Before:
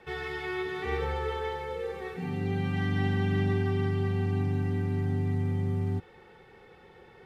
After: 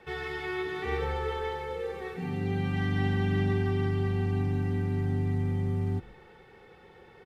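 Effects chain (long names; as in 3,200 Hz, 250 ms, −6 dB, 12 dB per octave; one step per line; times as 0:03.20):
echo with shifted repeats 139 ms, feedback 37%, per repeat −50 Hz, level −22 dB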